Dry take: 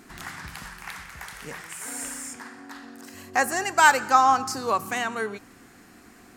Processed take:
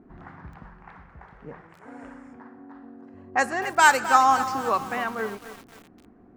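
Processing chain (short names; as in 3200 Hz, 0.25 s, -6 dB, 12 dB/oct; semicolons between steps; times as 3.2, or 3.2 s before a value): low-pass opened by the level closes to 600 Hz, open at -15 dBFS; lo-fi delay 0.263 s, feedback 55%, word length 6-bit, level -11.5 dB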